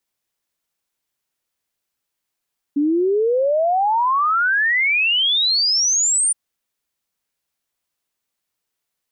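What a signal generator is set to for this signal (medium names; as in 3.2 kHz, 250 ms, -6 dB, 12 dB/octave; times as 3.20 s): log sweep 280 Hz -> 9.3 kHz 3.57 s -14.5 dBFS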